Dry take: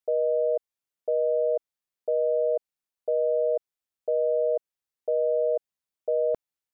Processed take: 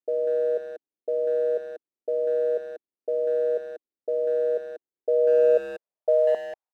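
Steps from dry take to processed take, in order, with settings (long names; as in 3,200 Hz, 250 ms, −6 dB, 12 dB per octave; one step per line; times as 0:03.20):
floating-point word with a short mantissa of 2 bits
band-pass filter sweep 320 Hz → 780 Hz, 0:04.70–0:06.44
far-end echo of a speakerphone 190 ms, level −9 dB
level +7.5 dB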